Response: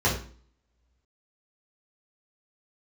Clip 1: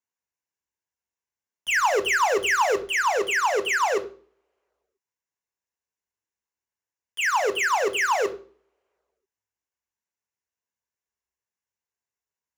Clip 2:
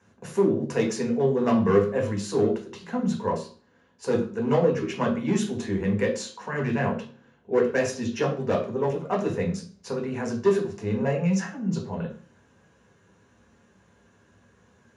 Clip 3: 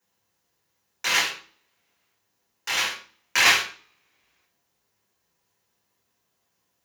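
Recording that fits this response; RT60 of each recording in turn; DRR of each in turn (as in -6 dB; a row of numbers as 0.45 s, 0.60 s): 3; 0.45 s, 0.45 s, 0.45 s; 9.0 dB, -1.0 dB, -7.0 dB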